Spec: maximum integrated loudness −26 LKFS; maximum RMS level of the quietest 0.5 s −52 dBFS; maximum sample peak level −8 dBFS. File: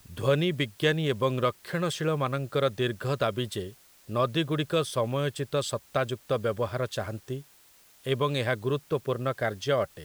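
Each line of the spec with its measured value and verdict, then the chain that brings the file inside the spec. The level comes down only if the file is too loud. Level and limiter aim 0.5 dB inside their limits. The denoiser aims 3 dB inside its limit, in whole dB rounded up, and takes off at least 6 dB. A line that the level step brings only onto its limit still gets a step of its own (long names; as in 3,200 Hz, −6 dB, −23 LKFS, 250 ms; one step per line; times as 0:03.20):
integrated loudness −29.0 LKFS: in spec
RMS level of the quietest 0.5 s −58 dBFS: in spec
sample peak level −11.0 dBFS: in spec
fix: no processing needed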